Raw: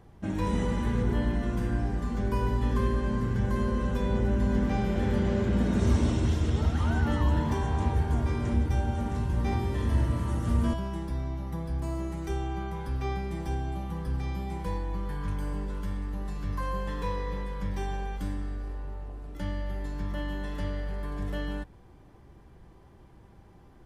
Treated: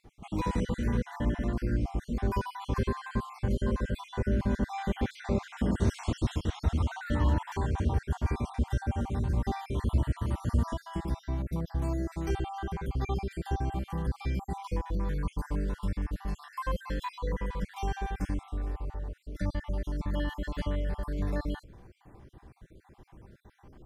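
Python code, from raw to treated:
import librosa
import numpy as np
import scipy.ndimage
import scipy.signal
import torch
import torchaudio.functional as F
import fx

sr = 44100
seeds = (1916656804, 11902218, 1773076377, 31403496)

p1 = fx.spec_dropout(x, sr, seeds[0], share_pct=45)
p2 = fx.rider(p1, sr, range_db=3, speed_s=0.5)
p3 = p1 + (p2 * 10.0 ** (2.5 / 20.0))
y = p3 * 10.0 ** (-6.5 / 20.0)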